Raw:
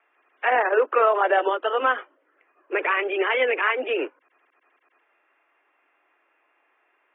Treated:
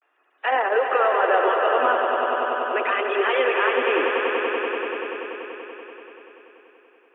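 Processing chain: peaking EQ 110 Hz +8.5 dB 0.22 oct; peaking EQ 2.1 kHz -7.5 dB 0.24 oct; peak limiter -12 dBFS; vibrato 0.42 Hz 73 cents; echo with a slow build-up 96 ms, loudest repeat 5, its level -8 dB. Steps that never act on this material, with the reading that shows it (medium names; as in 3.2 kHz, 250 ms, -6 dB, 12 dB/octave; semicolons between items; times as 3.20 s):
peaking EQ 110 Hz: input has nothing below 240 Hz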